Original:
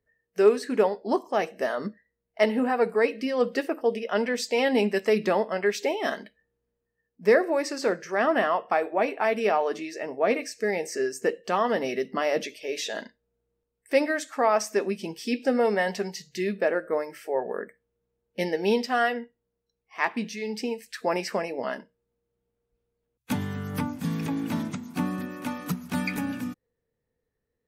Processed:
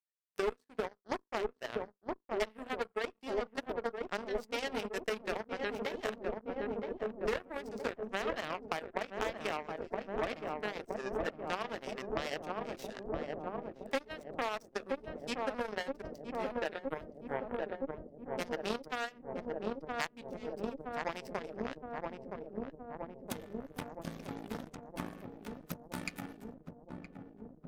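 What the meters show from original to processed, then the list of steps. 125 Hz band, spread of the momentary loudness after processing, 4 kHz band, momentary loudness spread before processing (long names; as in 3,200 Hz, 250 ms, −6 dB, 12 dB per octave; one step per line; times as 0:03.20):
−12.0 dB, 8 LU, −8.5 dB, 10 LU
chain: mains-hum notches 50/100/150/200/250/300/350/400/450/500 Hz
upward compression, threshold −35 dBFS
power curve on the samples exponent 3
asymmetric clip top −27.5 dBFS
on a send: feedback echo with a low-pass in the loop 968 ms, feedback 81%, low-pass 860 Hz, level −7 dB
on the sum: downward compressor 8 to 1, threshold −48 dBFS, peak gain reduction 25.5 dB
level +16 dB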